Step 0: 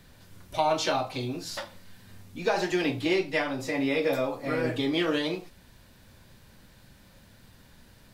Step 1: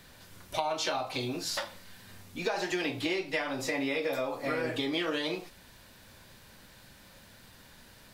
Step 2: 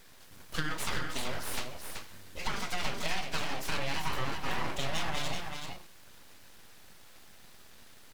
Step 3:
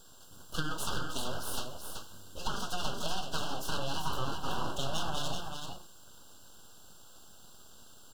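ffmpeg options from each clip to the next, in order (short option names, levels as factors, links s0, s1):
-af "lowshelf=f=330:g=-8.5,acompressor=threshold=0.0251:ratio=6,volume=1.58"
-filter_complex "[0:a]aeval=exprs='abs(val(0))':c=same,asplit=2[s0][s1];[s1]aecho=0:1:381:0.531[s2];[s0][s2]amix=inputs=2:normalize=0"
-af "asuperstop=centerf=2100:order=12:qfactor=1.8,aeval=exprs='val(0)+0.000794*sin(2*PI*7400*n/s)':c=same"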